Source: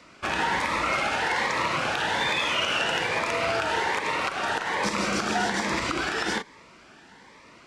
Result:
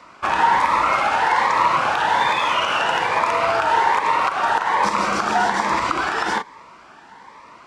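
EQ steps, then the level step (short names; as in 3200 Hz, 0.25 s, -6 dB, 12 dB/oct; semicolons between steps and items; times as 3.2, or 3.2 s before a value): bell 990 Hz +13 dB 1.1 oct; 0.0 dB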